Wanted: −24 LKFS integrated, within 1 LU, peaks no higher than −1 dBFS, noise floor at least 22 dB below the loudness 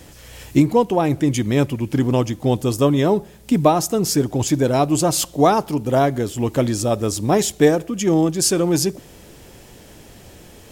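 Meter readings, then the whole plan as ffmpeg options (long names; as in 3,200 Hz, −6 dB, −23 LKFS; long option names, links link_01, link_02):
integrated loudness −18.5 LKFS; sample peak −2.0 dBFS; target loudness −24.0 LKFS
→ -af "volume=-5.5dB"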